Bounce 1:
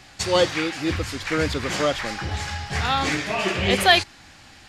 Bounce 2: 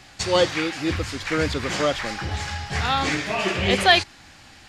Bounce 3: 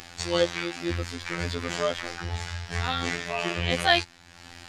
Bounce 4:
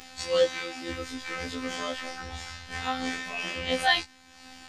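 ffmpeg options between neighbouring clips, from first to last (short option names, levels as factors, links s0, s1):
-filter_complex "[0:a]acrossover=split=9700[s0][s1];[s1]acompressor=threshold=0.00178:ratio=4:attack=1:release=60[s2];[s0][s2]amix=inputs=2:normalize=0"
-af "acompressor=mode=upward:threshold=0.0282:ratio=2.5,afftfilt=real='hypot(re,im)*cos(PI*b)':imag='0':win_size=2048:overlap=0.75,volume=0.794"
-af "afftfilt=real='re*1.73*eq(mod(b,3),0)':imag='im*1.73*eq(mod(b,3),0)':win_size=2048:overlap=0.75"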